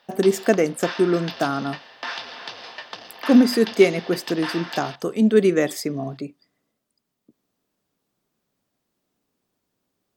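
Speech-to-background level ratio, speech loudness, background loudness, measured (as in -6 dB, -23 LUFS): 13.5 dB, -20.5 LUFS, -34.0 LUFS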